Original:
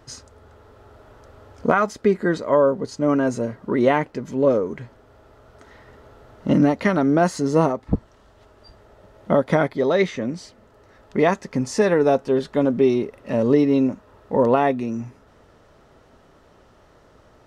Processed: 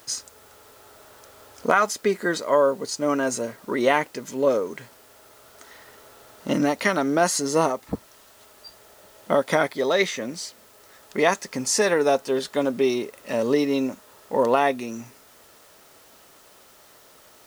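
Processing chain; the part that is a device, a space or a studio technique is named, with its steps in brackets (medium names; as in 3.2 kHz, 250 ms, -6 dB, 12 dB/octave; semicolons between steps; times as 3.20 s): turntable without a phono preamp (RIAA curve recording; white noise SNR 30 dB)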